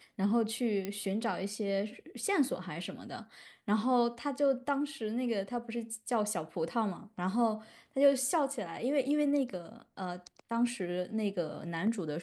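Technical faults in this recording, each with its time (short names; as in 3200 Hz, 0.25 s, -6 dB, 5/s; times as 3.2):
0.85 pop -21 dBFS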